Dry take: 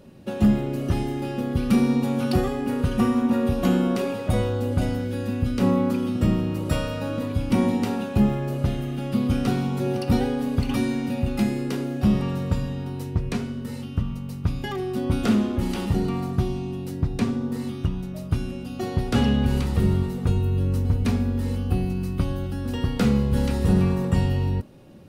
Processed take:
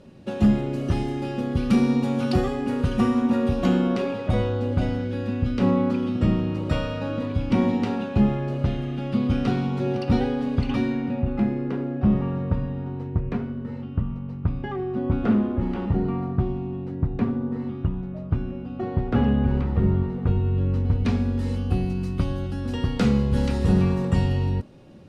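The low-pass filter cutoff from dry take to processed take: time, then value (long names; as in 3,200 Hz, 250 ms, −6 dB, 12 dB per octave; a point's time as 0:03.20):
0:03.36 7,300 Hz
0:04.07 4,200 Hz
0:10.66 4,200 Hz
0:11.26 1,600 Hz
0:19.93 1,600 Hz
0:20.87 3,200 Hz
0:21.31 7,300 Hz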